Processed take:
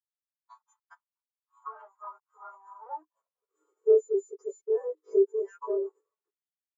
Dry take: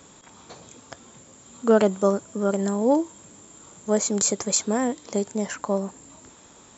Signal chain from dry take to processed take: frequency quantiser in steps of 2 st; expander -39 dBFS; compressor 12:1, threshold -28 dBFS, peak gain reduction 19 dB; companded quantiser 2-bit; high-pass sweep 900 Hz -> 390 Hz, 2.79–3.6; rippled Chebyshev high-pass 300 Hz, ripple 6 dB; air absorption 88 m; spectral expander 2.5:1; gain +4.5 dB

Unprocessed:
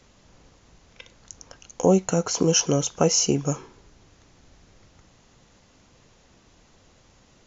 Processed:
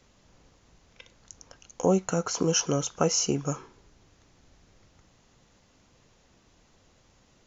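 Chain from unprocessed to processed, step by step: dynamic EQ 1300 Hz, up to +6 dB, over -48 dBFS, Q 2; gain -5 dB

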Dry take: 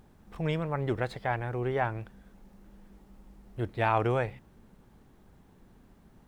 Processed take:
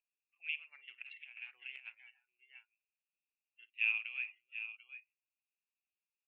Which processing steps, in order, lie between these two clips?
Wiener smoothing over 9 samples; tapped delay 53/339/742 ms -18/-20/-10.5 dB; spectral noise reduction 21 dB; Butterworth band-pass 2600 Hz, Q 7.2; 1.02–1.95 negative-ratio compressor -60 dBFS, ratio -0.5; gain +11 dB

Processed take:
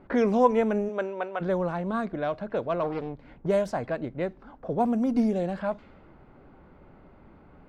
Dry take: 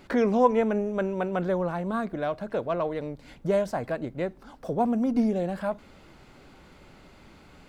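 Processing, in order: 0.88–1.4 HPF 280 Hz -> 630 Hz 12 dB/oct; low-pass opened by the level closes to 1100 Hz, open at -21 dBFS; 2.83–3.46 Doppler distortion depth 0.71 ms

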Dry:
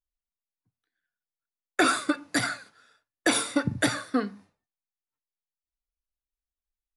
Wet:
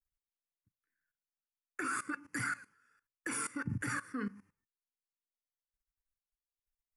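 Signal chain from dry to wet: level quantiser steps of 18 dB; fixed phaser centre 1600 Hz, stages 4; gain +2 dB

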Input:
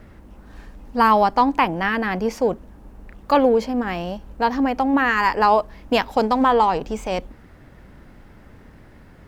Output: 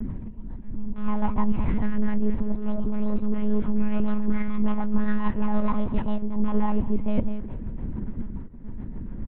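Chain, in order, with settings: one diode to ground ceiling -17.5 dBFS; dynamic EQ 2700 Hz, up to +5 dB, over -37 dBFS, Q 1; auto swell 0.344 s; in parallel at +1.5 dB: level quantiser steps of 9 dB; on the sum: echoes that change speed 0.128 s, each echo +3 st, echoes 3, each echo -6 dB; rotary speaker horn 7 Hz; feedback echo 0.205 s, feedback 30%, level -18.5 dB; monotone LPC vocoder at 8 kHz 210 Hz; tilt -4 dB/oct; reverse; compressor 6:1, threshold -13 dBFS, peak gain reduction 19.5 dB; reverse; small resonant body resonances 220/950 Hz, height 11 dB, ringing for 35 ms; gain -6 dB

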